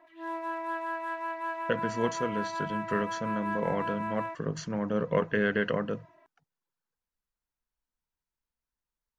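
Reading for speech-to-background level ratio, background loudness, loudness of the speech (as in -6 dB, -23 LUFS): 3.0 dB, -35.0 LUFS, -32.0 LUFS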